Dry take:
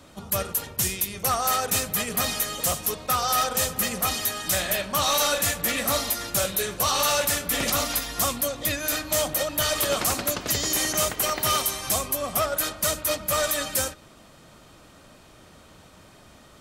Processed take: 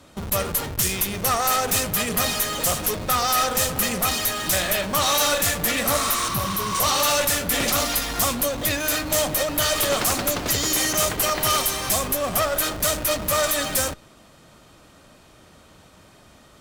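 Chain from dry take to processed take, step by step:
0:05.95–0:06.77: healed spectral selection 920–9,800 Hz both
0:06.28–0:06.75: octave-band graphic EQ 125/250/500/2,000/8,000 Hz +4/+4/−12/−6/−12 dB
in parallel at −6 dB: comparator with hysteresis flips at −37.5 dBFS
on the sum: harmonic generator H 2 −6 dB, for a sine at −11 dBFS

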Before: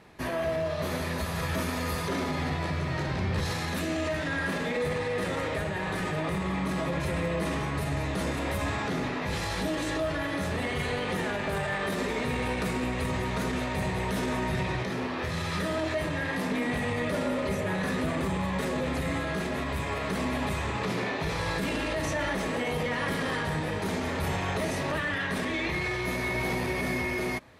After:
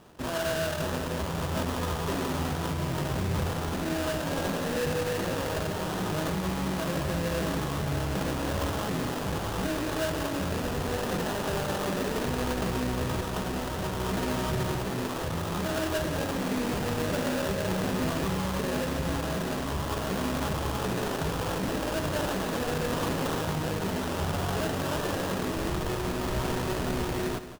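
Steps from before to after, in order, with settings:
0:13.21–0:14.00: tilt shelving filter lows −3.5 dB, about 1,500 Hz
sample-rate reduction 2,200 Hz, jitter 20%
on a send: single-tap delay 173 ms −11.5 dB

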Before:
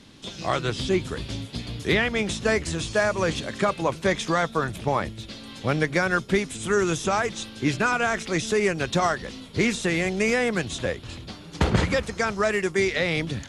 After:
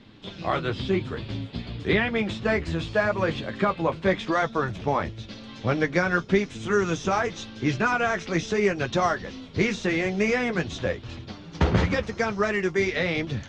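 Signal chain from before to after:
high-frequency loss of the air 170 metres
flanger 0.9 Hz, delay 8.3 ms, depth 3.9 ms, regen −34%
parametric band 6,000 Hz −5 dB 0.42 octaves, from 0:04.32 +6.5 dB
level +4 dB

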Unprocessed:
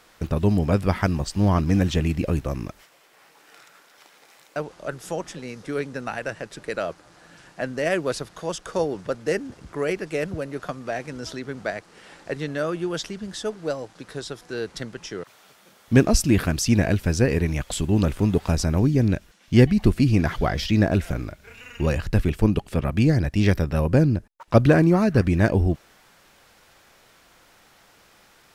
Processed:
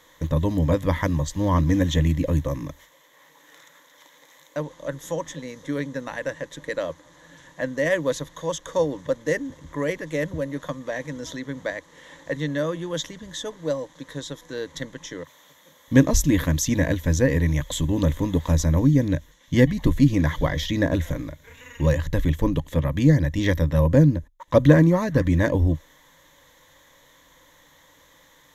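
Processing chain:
EQ curve with evenly spaced ripples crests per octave 1.1, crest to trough 13 dB
level −2 dB

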